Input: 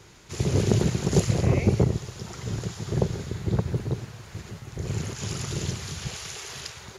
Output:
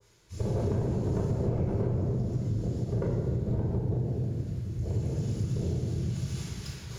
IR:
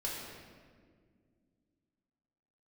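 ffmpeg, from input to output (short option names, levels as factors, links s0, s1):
-filter_complex "[0:a]acrossover=split=400|3300[s0][s1][s2];[s2]asoftclip=type=tanh:threshold=0.0251[s3];[s0][s1][s3]amix=inputs=3:normalize=0,afwtdn=0.0355,areverse,acompressor=mode=upward:threshold=0.0141:ratio=2.5,areverse,aemphasis=mode=production:type=cd,asoftclip=type=hard:threshold=0.0891[s4];[1:a]atrim=start_sample=2205[s5];[s4][s5]afir=irnorm=-1:irlink=0,acompressor=threshold=0.0562:ratio=6,adynamicequalizer=threshold=0.00398:dfrequency=1500:dqfactor=0.7:tfrequency=1500:tqfactor=0.7:attack=5:release=100:ratio=0.375:range=1.5:mode=cutabove:tftype=highshelf"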